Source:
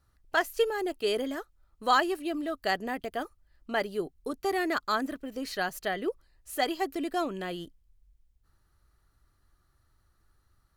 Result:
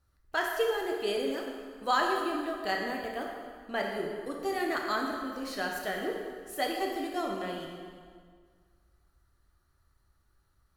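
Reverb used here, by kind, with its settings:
dense smooth reverb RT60 1.9 s, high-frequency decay 0.8×, DRR −0.5 dB
level −4.5 dB

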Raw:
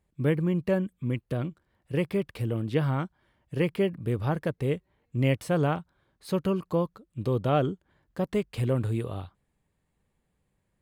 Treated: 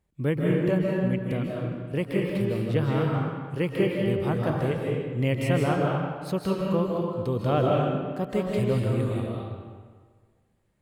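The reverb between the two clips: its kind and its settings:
comb and all-pass reverb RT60 1.6 s, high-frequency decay 0.75×, pre-delay 115 ms, DRR −2.5 dB
level −1 dB

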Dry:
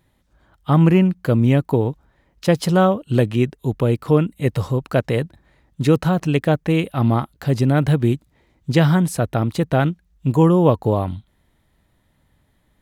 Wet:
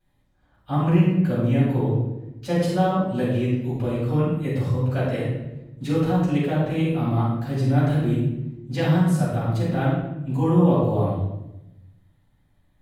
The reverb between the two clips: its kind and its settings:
rectangular room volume 330 cubic metres, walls mixed, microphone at 7.8 metres
level −21.5 dB

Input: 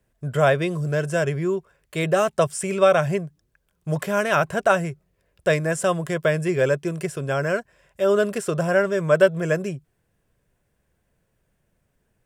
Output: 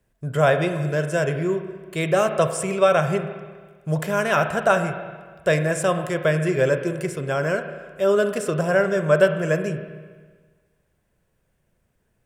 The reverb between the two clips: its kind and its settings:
spring reverb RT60 1.5 s, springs 32/46 ms, chirp 30 ms, DRR 7.5 dB

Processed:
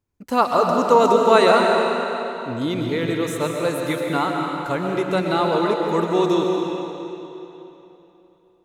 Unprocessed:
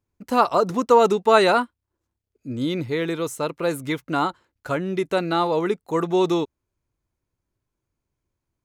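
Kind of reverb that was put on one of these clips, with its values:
comb and all-pass reverb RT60 3.2 s, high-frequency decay 0.9×, pre-delay 85 ms, DRR 0.5 dB

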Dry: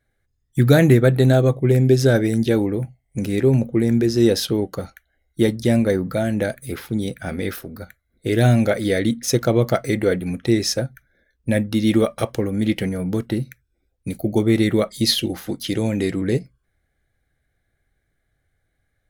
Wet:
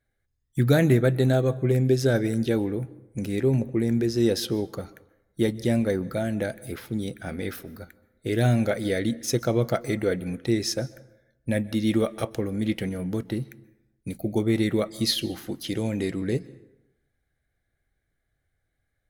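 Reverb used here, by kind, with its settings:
dense smooth reverb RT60 0.92 s, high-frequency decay 0.6×, pre-delay 115 ms, DRR 20 dB
level −6 dB

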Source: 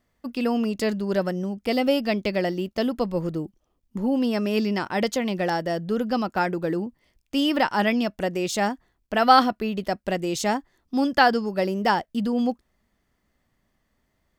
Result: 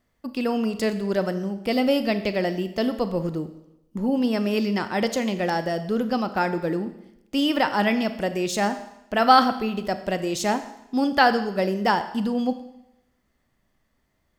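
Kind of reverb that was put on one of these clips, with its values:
four-comb reverb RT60 0.86 s, combs from 28 ms, DRR 10 dB

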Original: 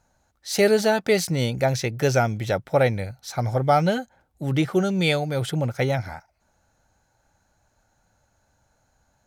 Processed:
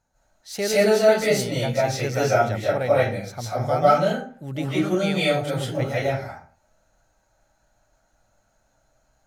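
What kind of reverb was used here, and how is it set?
comb and all-pass reverb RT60 0.45 s, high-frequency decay 0.6×, pre-delay 115 ms, DRR −8.5 dB
level −8 dB

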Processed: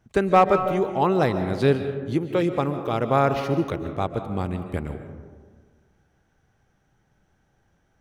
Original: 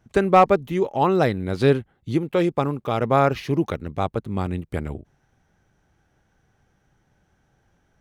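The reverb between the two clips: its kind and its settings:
comb and all-pass reverb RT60 1.6 s, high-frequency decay 0.35×, pre-delay 100 ms, DRR 8.5 dB
level −2 dB

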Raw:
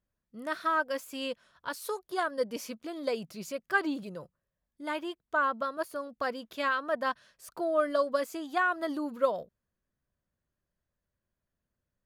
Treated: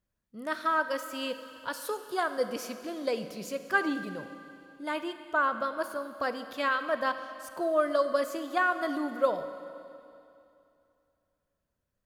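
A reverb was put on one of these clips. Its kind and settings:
four-comb reverb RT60 2.7 s, combs from 32 ms, DRR 9.5 dB
level +1 dB

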